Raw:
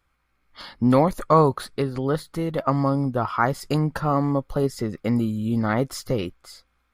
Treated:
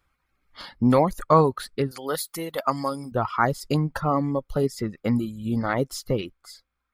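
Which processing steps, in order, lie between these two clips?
1.91–3.12 s: RIAA curve recording; reverb removal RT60 1.1 s

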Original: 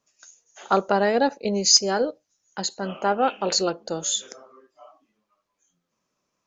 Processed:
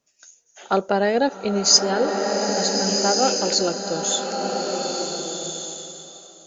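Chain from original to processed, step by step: peaking EQ 1.1 kHz -7 dB 0.51 oct; swelling reverb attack 1480 ms, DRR 2 dB; trim +1.5 dB

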